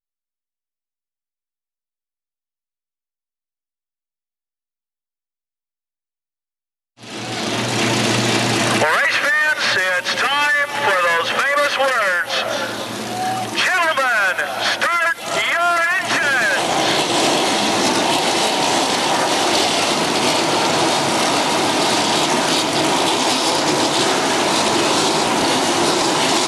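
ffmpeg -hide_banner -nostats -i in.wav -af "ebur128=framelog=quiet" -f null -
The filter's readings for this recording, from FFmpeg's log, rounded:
Integrated loudness:
  I:         -16.2 LUFS
  Threshold: -26.3 LUFS
Loudness range:
  LRA:         2.6 LU
  Threshold: -36.7 LUFS
  LRA low:   -18.4 LUFS
  LRA high:  -15.7 LUFS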